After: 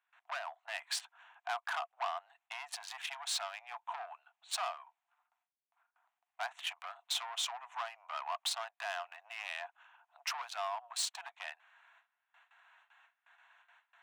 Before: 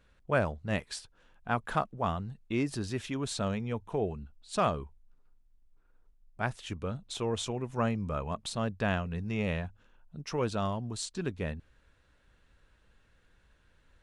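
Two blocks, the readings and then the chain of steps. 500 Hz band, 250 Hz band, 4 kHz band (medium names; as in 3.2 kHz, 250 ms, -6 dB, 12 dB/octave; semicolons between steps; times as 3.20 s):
-14.0 dB, under -40 dB, +3.5 dB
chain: local Wiener filter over 9 samples; gate with hold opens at -55 dBFS; compression 6:1, threshold -36 dBFS, peak gain reduction 14 dB; saturation -38.5 dBFS, distortion -10 dB; rippled Chebyshev high-pass 680 Hz, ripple 3 dB; trim +12 dB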